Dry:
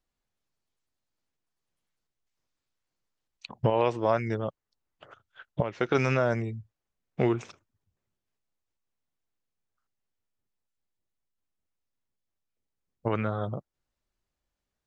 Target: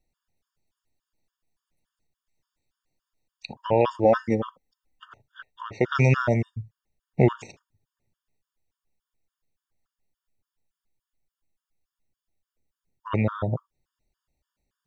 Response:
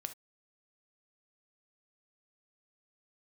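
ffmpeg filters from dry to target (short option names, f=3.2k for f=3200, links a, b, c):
-filter_complex "[0:a]asettb=1/sr,asplit=3[a][b][c];[a]atrim=end=4.044[d];[b]atrim=start=4.04:end=5.08,asetpts=PTS-STARTPTS,afade=t=in:d=0.004:c=qsin,afade=t=out:st=1.036:d=0.004:c=qsin,aecho=1:1:3.9:0.69,atrim=end_sample=45864[e];[c]atrim=start=5.076[f];[d][e]acrossfade=d=0.004:c1=hsin:c2=qsin[g];[g][f]acrossfade=d=0.004:c1=qsin:c2=hsin,asplit=2[h][i];[1:a]atrim=start_sample=2205,lowshelf=f=320:g=11[j];[i][j]afir=irnorm=-1:irlink=0,volume=-6dB[k];[h][k]amix=inputs=2:normalize=0,afftfilt=real='re*gt(sin(2*PI*3.5*pts/sr)*(1-2*mod(floor(b*sr/1024/920),2)),0)':imag='im*gt(sin(2*PI*3.5*pts/sr)*(1-2*mod(floor(b*sr/1024/920),2)),0)':win_size=1024:overlap=0.75,volume=2.5dB"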